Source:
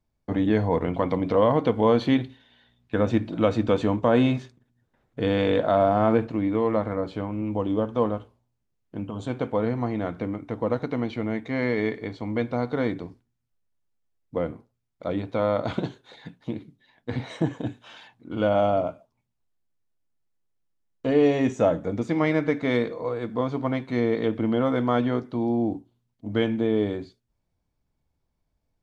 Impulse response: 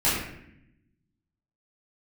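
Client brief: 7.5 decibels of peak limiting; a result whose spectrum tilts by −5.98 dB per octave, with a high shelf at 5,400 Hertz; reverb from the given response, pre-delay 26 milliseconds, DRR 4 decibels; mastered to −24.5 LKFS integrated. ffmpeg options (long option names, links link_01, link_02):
-filter_complex "[0:a]highshelf=frequency=5400:gain=5,alimiter=limit=-14.5dB:level=0:latency=1,asplit=2[link_01][link_02];[1:a]atrim=start_sample=2205,adelay=26[link_03];[link_02][link_03]afir=irnorm=-1:irlink=0,volume=-18.5dB[link_04];[link_01][link_04]amix=inputs=2:normalize=0,volume=1dB"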